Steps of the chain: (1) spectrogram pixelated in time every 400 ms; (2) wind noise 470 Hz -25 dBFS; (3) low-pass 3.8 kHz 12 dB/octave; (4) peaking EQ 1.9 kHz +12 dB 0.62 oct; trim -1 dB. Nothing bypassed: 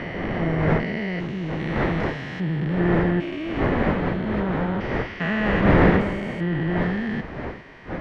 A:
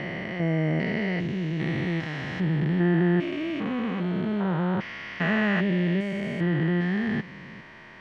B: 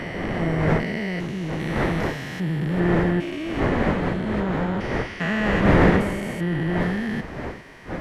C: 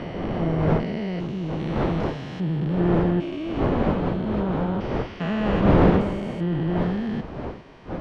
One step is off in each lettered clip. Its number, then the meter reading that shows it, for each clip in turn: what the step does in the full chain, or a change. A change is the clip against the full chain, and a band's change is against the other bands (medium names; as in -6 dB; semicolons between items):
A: 2, 1 kHz band -5.5 dB; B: 3, 4 kHz band +2.0 dB; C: 4, 2 kHz band -8.5 dB